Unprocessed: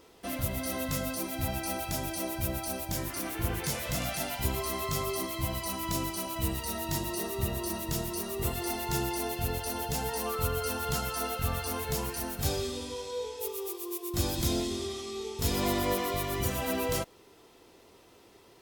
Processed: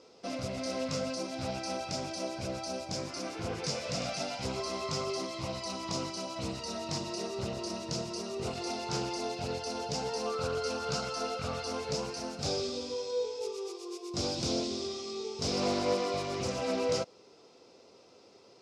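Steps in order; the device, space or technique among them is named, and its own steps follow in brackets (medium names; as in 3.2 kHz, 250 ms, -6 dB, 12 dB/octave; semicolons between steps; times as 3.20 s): full-range speaker at full volume (loudspeaker Doppler distortion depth 0.42 ms; cabinet simulation 150–6700 Hz, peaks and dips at 330 Hz -4 dB, 520 Hz +5 dB, 960 Hz -4 dB, 1.8 kHz -10 dB, 3.2 kHz -6 dB, 5.1 kHz +7 dB)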